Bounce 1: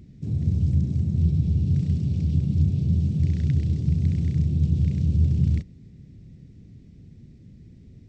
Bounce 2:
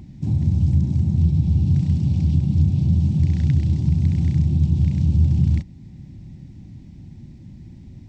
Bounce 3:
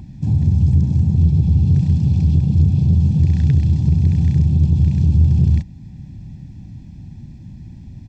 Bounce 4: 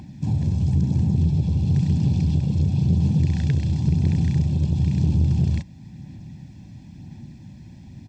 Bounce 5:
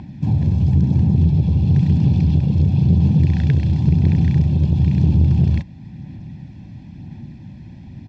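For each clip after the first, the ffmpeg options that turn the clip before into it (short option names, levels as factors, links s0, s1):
-filter_complex "[0:a]asplit=2[s0][s1];[s1]alimiter=limit=0.1:level=0:latency=1:release=438,volume=1.19[s2];[s0][s2]amix=inputs=2:normalize=0,superequalizer=7b=0.316:9b=3.16"
-filter_complex "[0:a]aecho=1:1:1.2:0.46,asplit=2[s0][s1];[s1]acontrast=83,volume=0.708[s2];[s0][s2]amix=inputs=2:normalize=0,volume=0.501"
-af "highpass=f=300:p=1,aphaser=in_gain=1:out_gain=1:delay=1.9:decay=0.22:speed=0.98:type=sinusoidal,volume=1.26"
-af "lowpass=3500,volume=1.78"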